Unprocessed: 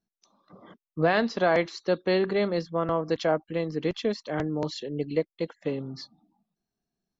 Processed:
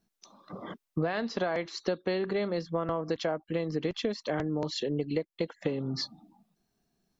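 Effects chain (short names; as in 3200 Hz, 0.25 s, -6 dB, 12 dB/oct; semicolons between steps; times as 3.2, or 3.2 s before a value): compressor 10:1, threshold -36 dBFS, peak gain reduction 18.5 dB; gain +9 dB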